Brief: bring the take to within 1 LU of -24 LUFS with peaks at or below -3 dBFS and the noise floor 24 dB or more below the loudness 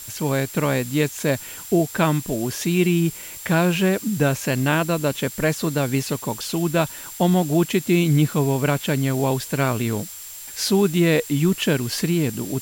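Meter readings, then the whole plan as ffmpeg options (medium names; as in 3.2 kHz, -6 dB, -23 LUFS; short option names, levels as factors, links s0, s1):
steady tone 7.4 kHz; tone level -40 dBFS; noise floor -37 dBFS; noise floor target -46 dBFS; loudness -21.5 LUFS; peak level -7.0 dBFS; loudness target -24.0 LUFS
-> -af "bandreject=f=7400:w=30"
-af "afftdn=nr=9:nf=-37"
-af "volume=0.75"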